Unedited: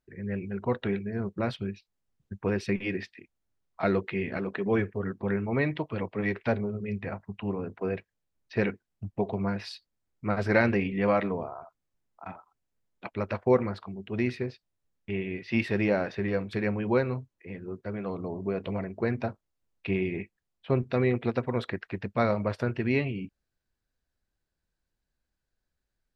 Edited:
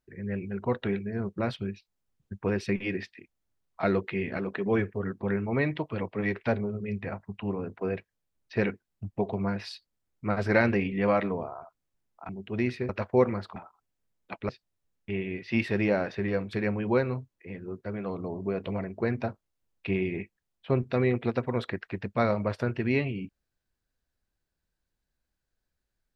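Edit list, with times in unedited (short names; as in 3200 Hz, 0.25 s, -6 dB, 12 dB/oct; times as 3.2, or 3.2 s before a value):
12.29–13.22 swap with 13.89–14.49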